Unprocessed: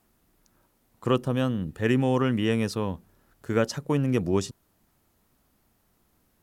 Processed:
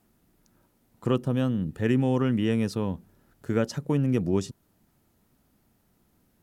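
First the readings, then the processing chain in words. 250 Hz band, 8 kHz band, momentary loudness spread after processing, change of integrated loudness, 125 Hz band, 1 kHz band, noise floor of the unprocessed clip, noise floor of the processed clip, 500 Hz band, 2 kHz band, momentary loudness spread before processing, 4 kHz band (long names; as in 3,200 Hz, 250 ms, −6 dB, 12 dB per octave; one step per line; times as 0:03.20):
+0.5 dB, −4.0 dB, 10 LU, −0.5 dB, +0.5 dB, −4.5 dB, −69 dBFS, −68 dBFS, −2.0 dB, −4.5 dB, 10 LU, −4.5 dB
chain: parametric band 180 Hz +6 dB 2.3 octaves
notch filter 1,100 Hz, Q 17
in parallel at −2.5 dB: downward compressor, threshold −26 dBFS, peak gain reduction 12.5 dB
on the sum: level −6.5 dB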